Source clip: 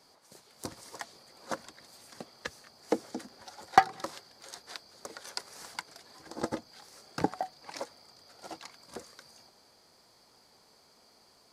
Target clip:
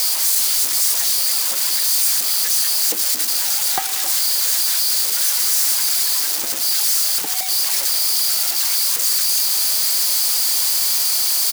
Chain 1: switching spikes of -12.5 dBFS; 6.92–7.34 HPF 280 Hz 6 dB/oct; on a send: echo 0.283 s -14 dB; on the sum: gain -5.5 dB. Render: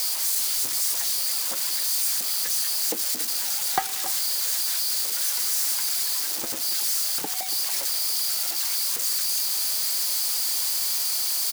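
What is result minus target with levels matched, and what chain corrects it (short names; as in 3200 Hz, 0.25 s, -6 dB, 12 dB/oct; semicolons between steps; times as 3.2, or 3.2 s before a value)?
switching spikes: distortion -6 dB
switching spikes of -5 dBFS; 6.92–7.34 HPF 280 Hz 6 dB/oct; on a send: echo 0.283 s -14 dB; on the sum: gain -5.5 dB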